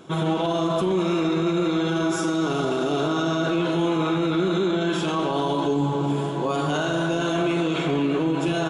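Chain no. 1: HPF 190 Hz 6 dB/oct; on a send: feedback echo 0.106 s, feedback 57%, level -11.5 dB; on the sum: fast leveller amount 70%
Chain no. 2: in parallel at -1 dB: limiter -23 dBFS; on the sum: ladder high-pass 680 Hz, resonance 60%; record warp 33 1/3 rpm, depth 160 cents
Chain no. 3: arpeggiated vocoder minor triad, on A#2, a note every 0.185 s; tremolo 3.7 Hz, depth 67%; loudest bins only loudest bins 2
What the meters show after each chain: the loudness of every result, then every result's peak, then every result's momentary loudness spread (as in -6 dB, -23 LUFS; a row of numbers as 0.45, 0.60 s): -21.0, -32.0, -31.0 LUFS; -9.5, -18.5, -16.0 dBFS; 0, 6, 7 LU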